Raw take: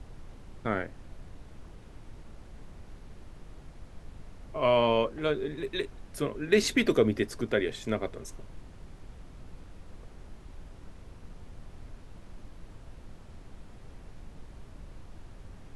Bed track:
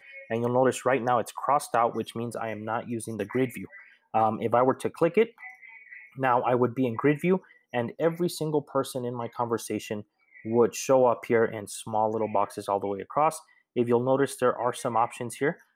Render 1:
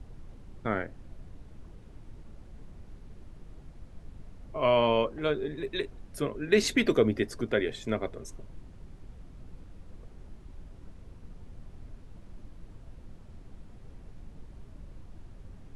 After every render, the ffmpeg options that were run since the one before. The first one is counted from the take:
ffmpeg -i in.wav -af "afftdn=noise_reduction=6:noise_floor=-50" out.wav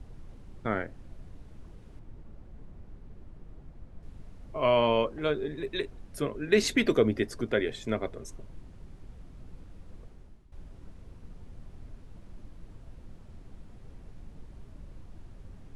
ffmpeg -i in.wav -filter_complex "[0:a]asettb=1/sr,asplit=3[link_01][link_02][link_03];[link_01]atrim=end=1.994[link_04];[link_02]atrim=start=1.99:end=4.03,asetpts=PTS-STARTPTS,afade=type=in:duration=0.004:curve=qsin,afade=type=out:start_time=2.036:duration=0.004:curve=qsin,highshelf=frequency=2700:gain=-10.5[link_05];[link_03]atrim=start=4.026[link_06];[link_04][link_05]acrossfade=duration=0.004:curve1=hsin:curve2=qsin[link_07];[link_07][link_06]acrossfade=duration=0.004:curve1=qsin:curve2=hsin,asplit=2[link_08][link_09];[link_08]atrim=end=10.52,asetpts=PTS-STARTPTS,afade=type=out:start_time=10:duration=0.52:silence=0.177828[link_10];[link_09]atrim=start=10.52,asetpts=PTS-STARTPTS,afade=type=in:duration=0.004:curve=hsin:silence=0.177828[link_11];[link_10][link_11]concat=n=2:v=0:a=1" out.wav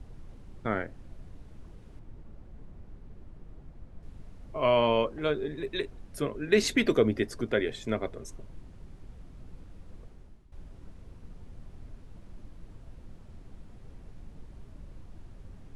ffmpeg -i in.wav -af anull out.wav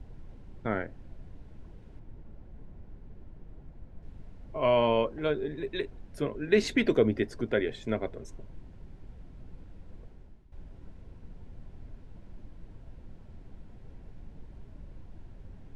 ffmpeg -i in.wav -af "aemphasis=mode=reproduction:type=50kf,bandreject=frequency=1200:width=8.4" out.wav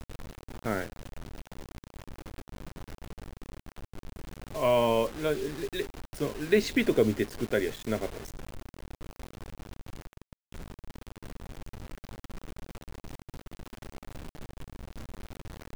ffmpeg -i in.wav -af "acrusher=bits=6:mix=0:aa=0.000001" out.wav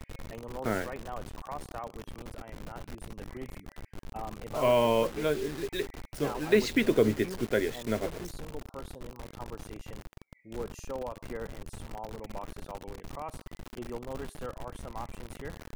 ffmpeg -i in.wav -i bed.wav -filter_complex "[1:a]volume=-16.5dB[link_01];[0:a][link_01]amix=inputs=2:normalize=0" out.wav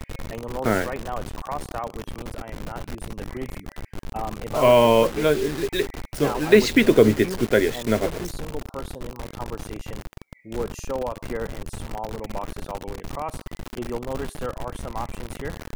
ffmpeg -i in.wav -af "volume=9dB" out.wav

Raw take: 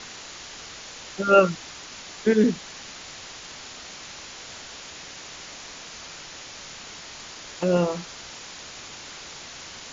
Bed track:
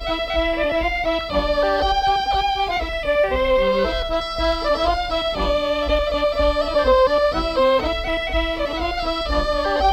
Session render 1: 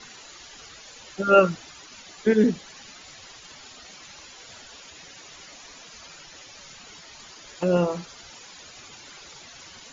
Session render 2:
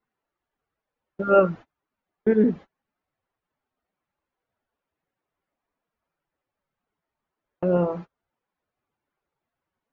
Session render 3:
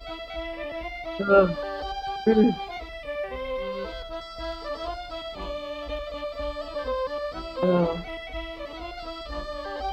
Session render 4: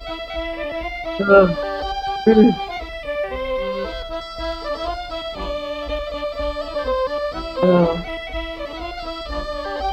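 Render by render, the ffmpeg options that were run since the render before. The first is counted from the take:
ffmpeg -i in.wav -af "afftdn=noise_reduction=12:noise_floor=-41" out.wav
ffmpeg -i in.wav -af "agate=range=-33dB:threshold=-35dB:ratio=16:detection=peak,lowpass=1300" out.wav
ffmpeg -i in.wav -i bed.wav -filter_complex "[1:a]volume=-13.5dB[link_01];[0:a][link_01]amix=inputs=2:normalize=0" out.wav
ffmpeg -i in.wav -af "volume=7.5dB,alimiter=limit=-1dB:level=0:latency=1" out.wav

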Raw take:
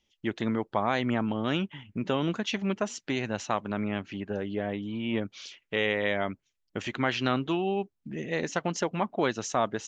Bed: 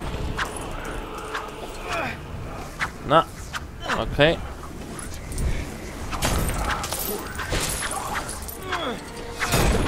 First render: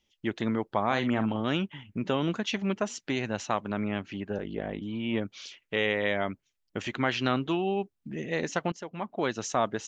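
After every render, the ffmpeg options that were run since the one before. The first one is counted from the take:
ffmpeg -i in.wav -filter_complex "[0:a]asettb=1/sr,asplit=3[link_01][link_02][link_03];[link_01]atrim=end=0.864[link_04];[link_02]atrim=start=0.86:end=1.4,asetpts=PTS-STARTPTS,afade=type=in:duration=0.004:curve=qsin,afade=type=out:start_time=0.536:duration=0.004:curve=qsin,asplit=2[link_05][link_06];[link_06]adelay=45,volume=-9.5dB[link_07];[link_05][link_07]amix=inputs=2:normalize=0,atrim=end_sample=23814[link_08];[link_03]atrim=start=1.396[link_09];[link_04][link_08]acrossfade=duration=0.004:curve1=hsin:curve2=qsin[link_10];[link_10][link_09]acrossfade=duration=0.004:curve1=qsin:curve2=hsin,asplit=3[link_11][link_12][link_13];[link_11]afade=type=out:start_time=4.37:duration=0.02[link_14];[link_12]aeval=exprs='val(0)*sin(2*PI*27*n/s)':channel_layout=same,afade=type=in:start_time=4.37:duration=0.02,afade=type=out:start_time=4.8:duration=0.02[link_15];[link_13]afade=type=in:start_time=4.8:duration=0.02[link_16];[link_14][link_15][link_16]amix=inputs=3:normalize=0,asplit=2[link_17][link_18];[link_17]atrim=end=8.72,asetpts=PTS-STARTPTS,afade=type=out:start_time=8.716:duration=0.004:curve=hsin:silence=0.141254[link_19];[link_18]atrim=start=8.72,asetpts=PTS-STARTPTS,afade=type=in:duration=0.72:silence=0.141254[link_20];[link_19][link_20]concat=n=2:v=0:a=1" out.wav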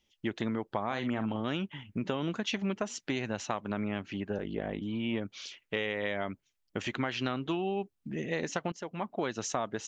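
ffmpeg -i in.wav -af "acompressor=threshold=-28dB:ratio=6" out.wav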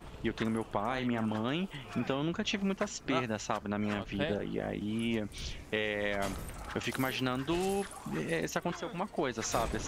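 ffmpeg -i in.wav -i bed.wav -filter_complex "[1:a]volume=-18dB[link_01];[0:a][link_01]amix=inputs=2:normalize=0" out.wav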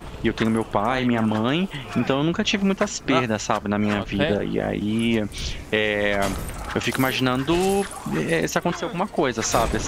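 ffmpeg -i in.wav -af "volume=11.5dB" out.wav

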